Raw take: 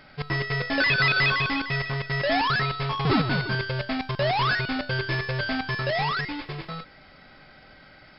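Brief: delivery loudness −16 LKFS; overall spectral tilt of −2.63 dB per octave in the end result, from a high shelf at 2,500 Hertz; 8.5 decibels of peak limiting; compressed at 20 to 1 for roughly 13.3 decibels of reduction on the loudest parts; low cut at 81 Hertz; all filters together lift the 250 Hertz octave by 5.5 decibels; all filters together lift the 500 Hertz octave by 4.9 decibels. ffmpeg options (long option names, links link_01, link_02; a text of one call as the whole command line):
ffmpeg -i in.wav -af "highpass=81,equalizer=frequency=250:width_type=o:gain=5.5,equalizer=frequency=500:width_type=o:gain=4.5,highshelf=frequency=2500:gain=8.5,acompressor=threshold=-25dB:ratio=20,volume=15dB,alimiter=limit=-7.5dB:level=0:latency=1" out.wav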